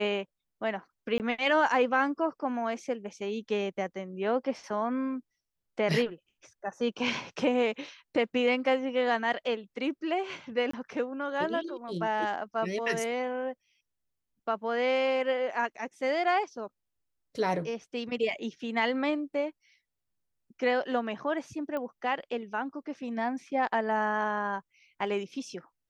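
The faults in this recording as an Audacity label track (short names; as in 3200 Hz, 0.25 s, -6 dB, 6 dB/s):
1.180000	1.200000	gap 18 ms
10.710000	10.730000	gap 24 ms
21.770000	21.770000	pop -23 dBFS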